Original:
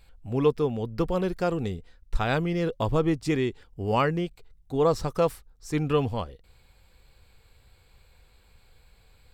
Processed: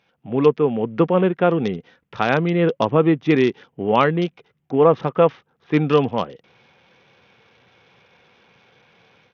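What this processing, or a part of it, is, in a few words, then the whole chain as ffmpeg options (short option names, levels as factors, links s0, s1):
Bluetooth headset: -af "highpass=f=150:w=0.5412,highpass=f=150:w=1.3066,dynaudnorm=f=120:g=3:m=3.35,aresample=8000,aresample=44100" -ar 48000 -c:a sbc -b:a 64k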